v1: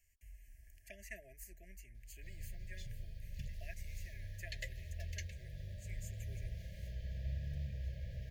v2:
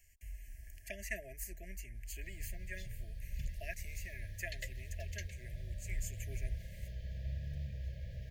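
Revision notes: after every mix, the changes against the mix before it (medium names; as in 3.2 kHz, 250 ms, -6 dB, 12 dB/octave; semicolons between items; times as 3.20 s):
speech +8.5 dB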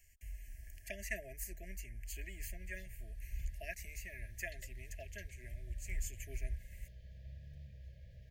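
background -10.5 dB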